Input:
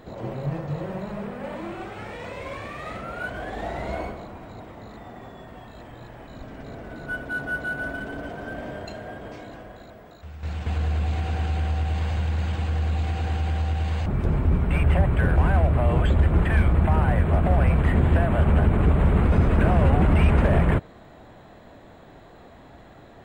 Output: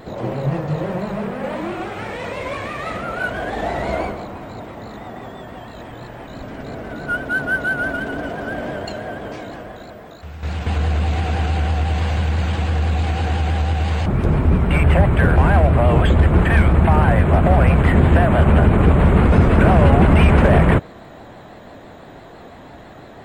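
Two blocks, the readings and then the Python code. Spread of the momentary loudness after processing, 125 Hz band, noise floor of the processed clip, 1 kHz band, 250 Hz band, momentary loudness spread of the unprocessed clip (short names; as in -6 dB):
20 LU, +6.0 dB, -40 dBFS, +8.5 dB, +7.5 dB, 21 LU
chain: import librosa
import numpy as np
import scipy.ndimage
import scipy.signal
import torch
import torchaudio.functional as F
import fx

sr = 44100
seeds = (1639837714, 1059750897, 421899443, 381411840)

y = fx.low_shelf(x, sr, hz=77.0, db=-6.5)
y = fx.vibrato(y, sr, rate_hz=6.0, depth_cents=69.0)
y = y * librosa.db_to_amplitude(8.5)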